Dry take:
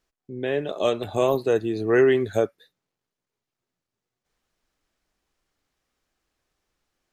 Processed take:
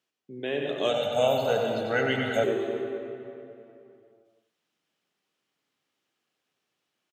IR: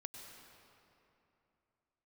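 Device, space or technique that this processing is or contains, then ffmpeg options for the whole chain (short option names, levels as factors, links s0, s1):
PA in a hall: -filter_complex "[0:a]highpass=f=130:w=0.5412,highpass=f=130:w=1.3066,equalizer=f=3000:t=o:w=0.63:g=7.5,aecho=1:1:94:0.422[s0];[1:a]atrim=start_sample=2205[s1];[s0][s1]afir=irnorm=-1:irlink=0,asettb=1/sr,asplit=3[s2][s3][s4];[s2]atrim=end=0.894[s5];[s3]atrim=start=0.89:end=2.44,asetpts=PTS-STARTPTS,afade=t=in:d=0.004:c=qsin,afade=t=out:st=1.546:d=0.004:c=qsin,aecho=1:1:1.4:0.97,atrim=end_sample=68355[s6];[s4]atrim=start=2.436[s7];[s5][s6]acrossfade=d=0.004:c1=hsin:c2=qsin[s8];[s8][s7]acrossfade=d=0.004:c1=qsin:c2=hsin"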